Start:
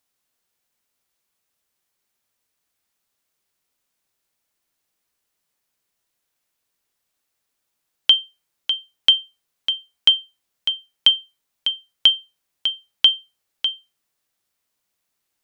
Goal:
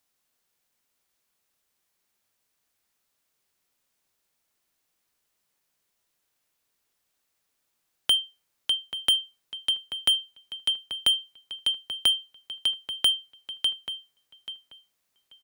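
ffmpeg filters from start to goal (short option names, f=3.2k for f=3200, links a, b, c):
-filter_complex "[0:a]acrossover=split=130|1900[a][b][c];[c]asoftclip=type=tanh:threshold=-20dB[d];[a][b][d]amix=inputs=3:normalize=0,asplit=2[e][f];[f]adelay=835,lowpass=f=3.3k:p=1,volume=-10dB,asplit=2[g][h];[h]adelay=835,lowpass=f=3.3k:p=1,volume=0.2,asplit=2[i][j];[j]adelay=835,lowpass=f=3.3k:p=1,volume=0.2[k];[e][g][i][k]amix=inputs=4:normalize=0"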